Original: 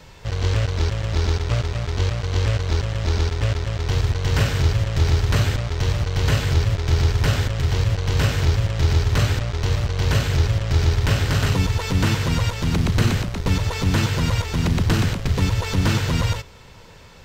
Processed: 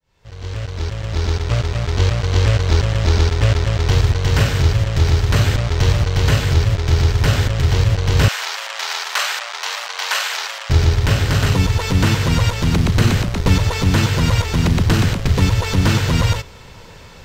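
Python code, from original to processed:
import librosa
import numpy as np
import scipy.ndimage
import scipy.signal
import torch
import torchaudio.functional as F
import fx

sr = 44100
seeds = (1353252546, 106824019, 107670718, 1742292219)

y = fx.fade_in_head(x, sr, length_s=2.85)
y = fx.highpass(y, sr, hz=800.0, slope=24, at=(8.28, 10.7))
y = fx.rider(y, sr, range_db=3, speed_s=0.5)
y = F.gain(torch.from_numpy(y), 5.5).numpy()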